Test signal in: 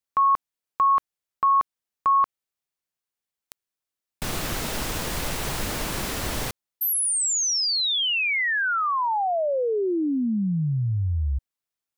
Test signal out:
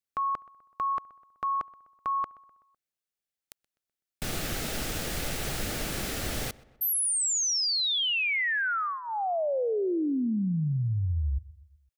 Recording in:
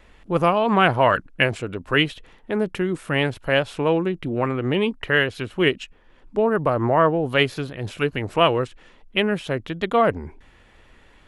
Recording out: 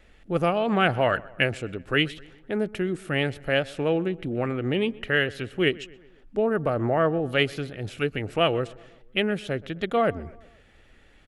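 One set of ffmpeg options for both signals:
-filter_complex "[0:a]equalizer=f=1k:w=6.1:g=-14,asplit=2[a][b];[b]adelay=126,lowpass=f=2.7k:p=1,volume=-21dB,asplit=2[c][d];[d]adelay=126,lowpass=f=2.7k:p=1,volume=0.54,asplit=2[e][f];[f]adelay=126,lowpass=f=2.7k:p=1,volume=0.54,asplit=2[g][h];[h]adelay=126,lowpass=f=2.7k:p=1,volume=0.54[i];[c][e][g][i]amix=inputs=4:normalize=0[j];[a][j]amix=inputs=2:normalize=0,volume=-3.5dB"

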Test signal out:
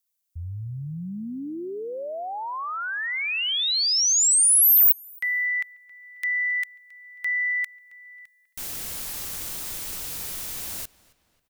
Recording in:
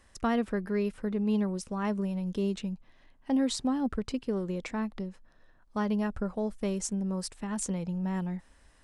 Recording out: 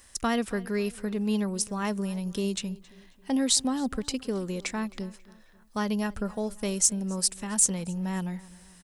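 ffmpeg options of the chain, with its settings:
-filter_complex "[0:a]asplit=2[a][b];[b]adelay=270,lowpass=f=4.6k:p=1,volume=-21dB,asplit=2[c][d];[d]adelay=270,lowpass=f=4.6k:p=1,volume=0.46,asplit=2[e][f];[f]adelay=270,lowpass=f=4.6k:p=1,volume=0.46[g];[a][c][e][g]amix=inputs=4:normalize=0,crystalizer=i=4.5:c=0,acontrast=45,volume=-5.5dB"

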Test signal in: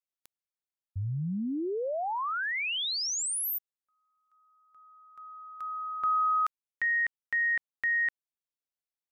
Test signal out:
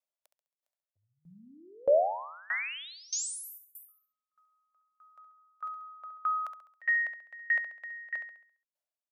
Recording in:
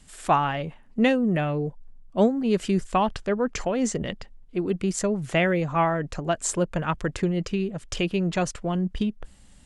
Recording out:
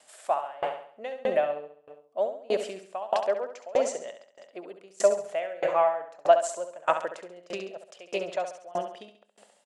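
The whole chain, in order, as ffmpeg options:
-af "highpass=f=610:t=q:w=4.5,aecho=1:1:68|136|204|272|340|408|476|544:0.473|0.279|0.165|0.0972|0.0573|0.0338|0.02|0.0118,aeval=exprs='val(0)*pow(10,-26*if(lt(mod(1.6*n/s,1),2*abs(1.6)/1000),1-mod(1.6*n/s,1)/(2*abs(1.6)/1000),(mod(1.6*n/s,1)-2*abs(1.6)/1000)/(1-2*abs(1.6)/1000))/20)':c=same"

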